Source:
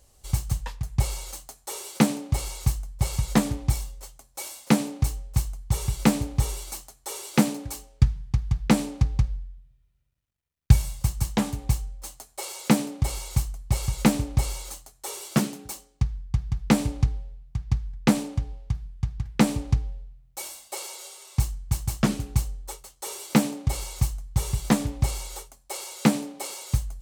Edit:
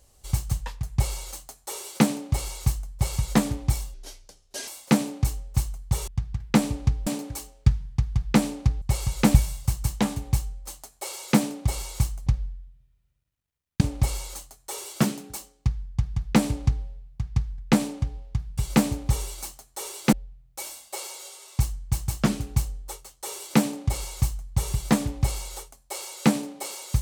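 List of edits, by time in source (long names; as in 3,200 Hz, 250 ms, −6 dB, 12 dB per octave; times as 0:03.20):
0:03.94–0:04.47: play speed 72%
0:05.87–0:07.42: swap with 0:18.93–0:19.92
0:09.17–0:10.71: swap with 0:13.63–0:14.16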